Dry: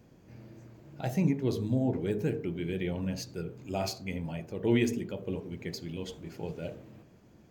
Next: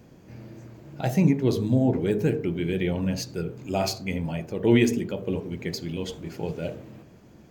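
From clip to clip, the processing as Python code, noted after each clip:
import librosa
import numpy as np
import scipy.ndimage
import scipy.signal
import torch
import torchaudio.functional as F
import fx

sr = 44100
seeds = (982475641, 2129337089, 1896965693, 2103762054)

y = fx.hum_notches(x, sr, base_hz=50, count=2)
y = y * librosa.db_to_amplitude(7.0)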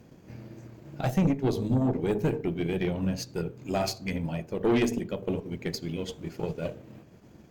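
y = fx.transient(x, sr, attack_db=3, sustain_db=-5)
y = fx.tube_stage(y, sr, drive_db=18.0, bias=0.45)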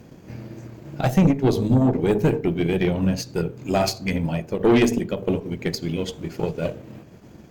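y = fx.end_taper(x, sr, db_per_s=240.0)
y = y * librosa.db_to_amplitude(7.5)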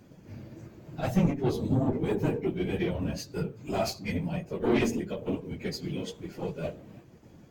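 y = fx.phase_scramble(x, sr, seeds[0], window_ms=50)
y = y * librosa.db_to_amplitude(-8.0)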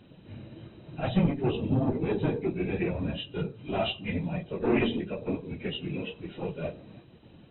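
y = fx.freq_compress(x, sr, knee_hz=2400.0, ratio=4.0)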